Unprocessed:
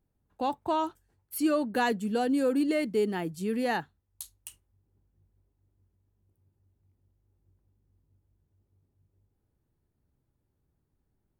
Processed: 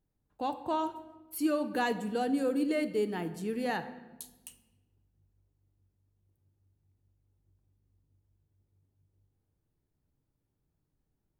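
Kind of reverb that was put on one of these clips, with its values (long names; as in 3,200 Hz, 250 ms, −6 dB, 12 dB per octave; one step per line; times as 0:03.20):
rectangular room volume 780 cubic metres, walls mixed, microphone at 0.49 metres
level −4 dB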